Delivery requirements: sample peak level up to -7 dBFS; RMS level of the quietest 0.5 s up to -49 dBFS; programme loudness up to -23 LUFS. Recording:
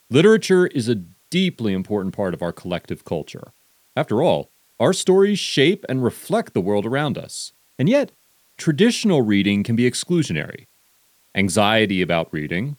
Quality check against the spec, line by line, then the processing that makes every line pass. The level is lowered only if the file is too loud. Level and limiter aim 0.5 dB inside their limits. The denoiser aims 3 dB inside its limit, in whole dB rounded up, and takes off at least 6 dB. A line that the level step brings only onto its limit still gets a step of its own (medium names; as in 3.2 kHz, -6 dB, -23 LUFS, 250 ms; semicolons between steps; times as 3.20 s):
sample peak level -2.5 dBFS: fail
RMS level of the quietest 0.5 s -59 dBFS: pass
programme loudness -20.0 LUFS: fail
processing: trim -3.5 dB; peak limiter -7.5 dBFS